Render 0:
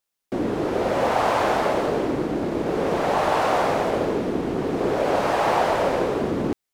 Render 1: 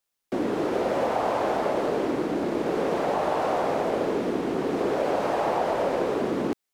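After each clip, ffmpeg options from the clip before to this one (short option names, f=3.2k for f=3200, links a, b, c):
-filter_complex "[0:a]acrossover=split=170|770[a][b][c];[a]acompressor=threshold=-49dB:ratio=4[d];[b]acompressor=threshold=-23dB:ratio=4[e];[c]acompressor=threshold=-33dB:ratio=4[f];[d][e][f]amix=inputs=3:normalize=0"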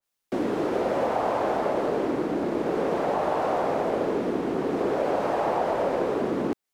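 -af "adynamicequalizer=threshold=0.00562:dfrequency=2100:dqfactor=0.7:tfrequency=2100:tqfactor=0.7:attack=5:release=100:ratio=0.375:range=2:mode=cutabove:tftype=highshelf"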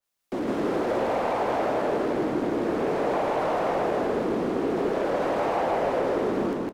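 -filter_complex "[0:a]asoftclip=type=tanh:threshold=-22.5dB,asplit=2[a][b];[b]aecho=0:1:160.3|274.1:0.891|0.282[c];[a][c]amix=inputs=2:normalize=0"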